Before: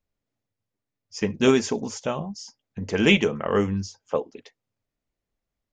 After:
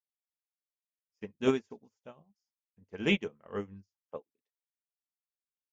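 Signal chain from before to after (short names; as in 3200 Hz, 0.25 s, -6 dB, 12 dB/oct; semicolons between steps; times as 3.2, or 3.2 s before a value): high shelf 4900 Hz -7.5 dB; upward expander 2.5:1, over -39 dBFS; gain -6.5 dB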